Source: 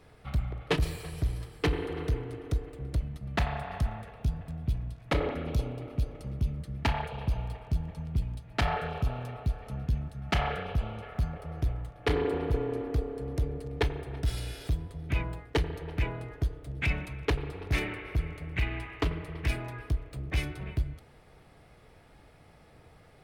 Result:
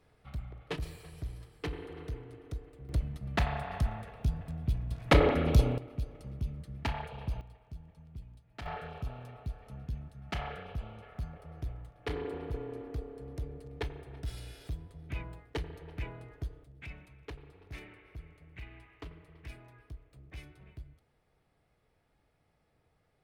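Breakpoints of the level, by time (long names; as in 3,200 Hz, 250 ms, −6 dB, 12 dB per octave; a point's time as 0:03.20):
−10 dB
from 0:02.89 −1 dB
from 0:04.91 +6 dB
from 0:05.78 −6 dB
from 0:07.41 −16.5 dB
from 0:08.66 −9 dB
from 0:16.64 −17 dB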